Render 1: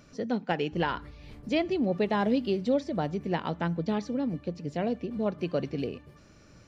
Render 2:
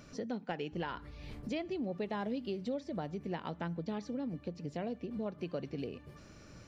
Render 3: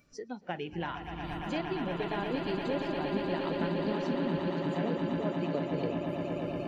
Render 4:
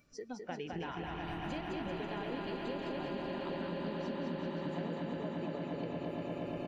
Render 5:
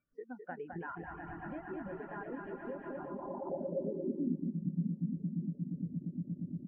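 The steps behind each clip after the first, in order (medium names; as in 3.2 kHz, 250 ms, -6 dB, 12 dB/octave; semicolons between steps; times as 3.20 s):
compression 2.5:1, threshold -41 dBFS, peak gain reduction 13.5 dB; trim +1 dB
on a send: echo with a slow build-up 117 ms, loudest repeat 8, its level -7 dB; on the sum: spectral noise reduction 16 dB; trim +2.5 dB
compression, threshold -35 dBFS, peak gain reduction 9 dB; bouncing-ball echo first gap 210 ms, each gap 0.85×, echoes 5; trim -2.5 dB
reverb removal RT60 0.68 s; low-pass sweep 1.6 kHz -> 200 Hz, 2.91–4.63 s; spectral contrast expander 1.5:1; trim +1.5 dB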